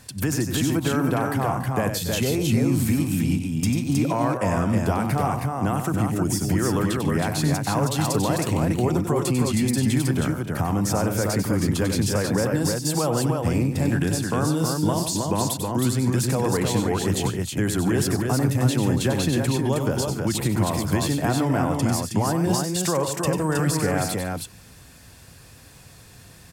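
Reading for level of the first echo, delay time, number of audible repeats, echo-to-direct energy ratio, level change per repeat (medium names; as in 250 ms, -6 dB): -7.5 dB, 95 ms, 4, -1.5 dB, no regular repeats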